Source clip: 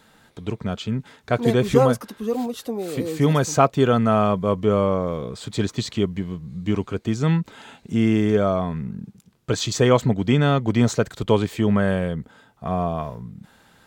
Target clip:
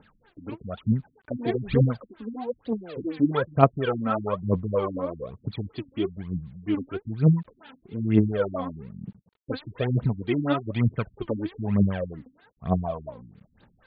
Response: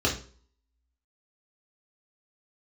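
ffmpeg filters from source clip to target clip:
-af "aphaser=in_gain=1:out_gain=1:delay=4:decay=0.77:speed=1.1:type=triangular,acrusher=bits=8:mix=0:aa=0.000001,afftfilt=real='re*lt(b*sr/1024,280*pow(4900/280,0.5+0.5*sin(2*PI*4.2*pts/sr)))':imag='im*lt(b*sr/1024,280*pow(4900/280,0.5+0.5*sin(2*PI*4.2*pts/sr)))':win_size=1024:overlap=0.75,volume=-8dB"

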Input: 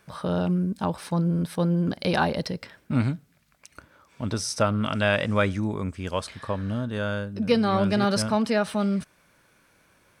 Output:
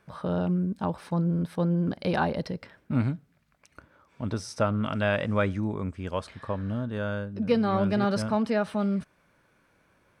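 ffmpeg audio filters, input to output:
ffmpeg -i in.wav -af "highshelf=frequency=3200:gain=-11,volume=-2dB" out.wav

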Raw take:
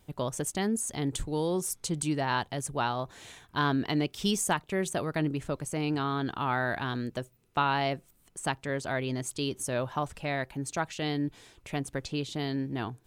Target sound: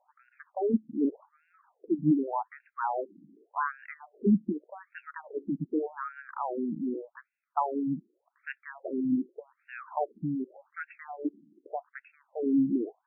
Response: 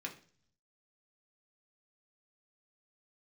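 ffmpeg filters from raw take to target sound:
-af "tiltshelf=frequency=790:gain=8,afftfilt=real='re*between(b*sr/1024,230*pow(2000/230,0.5+0.5*sin(2*PI*0.85*pts/sr))/1.41,230*pow(2000/230,0.5+0.5*sin(2*PI*0.85*pts/sr))*1.41)':imag='im*between(b*sr/1024,230*pow(2000/230,0.5+0.5*sin(2*PI*0.85*pts/sr))/1.41,230*pow(2000/230,0.5+0.5*sin(2*PI*0.85*pts/sr))*1.41)':win_size=1024:overlap=0.75,volume=3dB"

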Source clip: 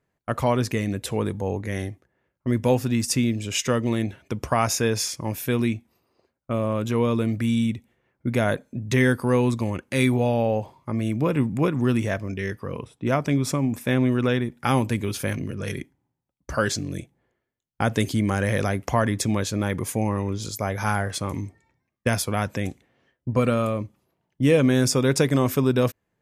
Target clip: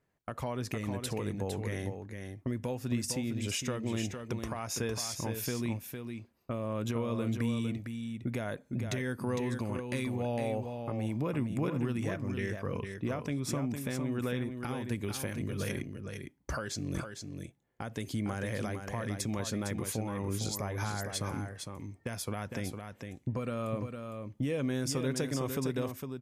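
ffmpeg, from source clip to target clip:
ffmpeg -i in.wav -af "acompressor=threshold=-25dB:ratio=6,alimiter=limit=-20.5dB:level=0:latency=1:release=404,aecho=1:1:457:0.473,volume=-2.5dB" out.wav

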